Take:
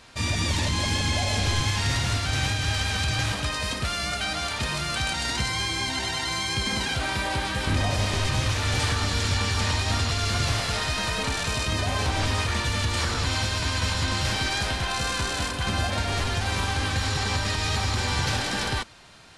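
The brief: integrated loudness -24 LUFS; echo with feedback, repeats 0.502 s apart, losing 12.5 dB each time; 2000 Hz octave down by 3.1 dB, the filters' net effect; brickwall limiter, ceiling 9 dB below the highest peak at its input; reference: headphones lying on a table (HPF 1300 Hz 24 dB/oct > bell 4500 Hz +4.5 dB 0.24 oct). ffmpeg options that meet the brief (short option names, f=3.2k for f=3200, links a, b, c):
-af "equalizer=f=2k:t=o:g=-3.5,alimiter=limit=-22.5dB:level=0:latency=1,highpass=f=1.3k:w=0.5412,highpass=f=1.3k:w=1.3066,equalizer=f=4.5k:t=o:w=0.24:g=4.5,aecho=1:1:502|1004|1506:0.237|0.0569|0.0137,volume=8.5dB"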